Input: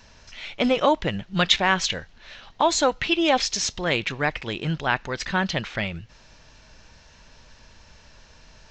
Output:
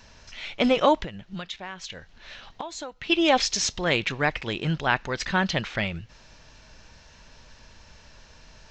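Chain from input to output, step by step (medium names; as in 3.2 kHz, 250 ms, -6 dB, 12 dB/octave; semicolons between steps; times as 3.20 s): 1.04–3.10 s: compression 12:1, threshold -33 dBFS, peak gain reduction 20.5 dB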